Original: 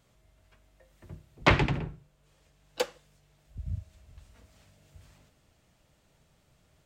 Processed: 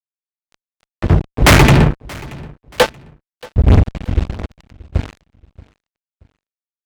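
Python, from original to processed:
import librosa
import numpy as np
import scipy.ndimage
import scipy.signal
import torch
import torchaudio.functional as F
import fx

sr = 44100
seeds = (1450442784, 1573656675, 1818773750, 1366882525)

y = scipy.signal.sosfilt(scipy.signal.butter(2, 3100.0, 'lowpass', fs=sr, output='sos'), x)
y = fx.low_shelf(y, sr, hz=160.0, db=7.0)
y = fx.rider(y, sr, range_db=4, speed_s=0.5)
y = fx.comb_fb(y, sr, f0_hz=220.0, decay_s=0.3, harmonics='all', damping=0.0, mix_pct=70, at=(1.57, 3.68))
y = fx.cheby_harmonics(y, sr, harmonics=(6,), levels_db=(-16,), full_scale_db=-9.0)
y = fx.fuzz(y, sr, gain_db=46.0, gate_db=-52.0)
y = fx.echo_feedback(y, sr, ms=629, feedback_pct=34, wet_db=-22.5)
y = F.gain(torch.from_numpy(y), 8.0).numpy()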